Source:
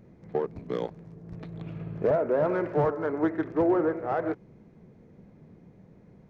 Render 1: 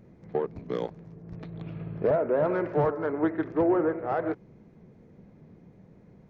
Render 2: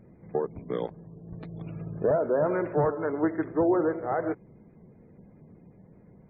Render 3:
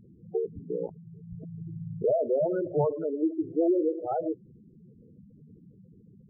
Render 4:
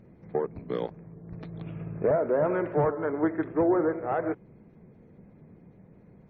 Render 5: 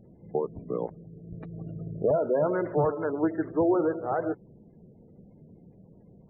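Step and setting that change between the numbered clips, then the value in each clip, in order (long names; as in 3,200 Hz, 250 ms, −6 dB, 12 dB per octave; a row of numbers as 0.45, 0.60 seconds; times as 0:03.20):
gate on every frequency bin, under each frame's peak: −60, −35, −10, −45, −25 decibels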